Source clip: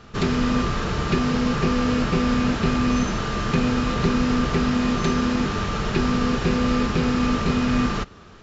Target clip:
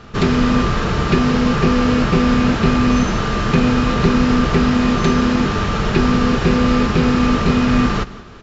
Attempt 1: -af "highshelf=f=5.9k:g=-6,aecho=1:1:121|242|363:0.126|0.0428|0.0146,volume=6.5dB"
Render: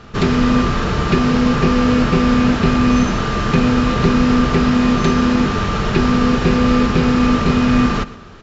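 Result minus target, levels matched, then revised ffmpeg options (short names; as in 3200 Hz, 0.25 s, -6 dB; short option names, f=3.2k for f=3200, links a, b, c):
echo 51 ms early
-af "highshelf=f=5.9k:g=-6,aecho=1:1:172|344|516:0.126|0.0428|0.0146,volume=6.5dB"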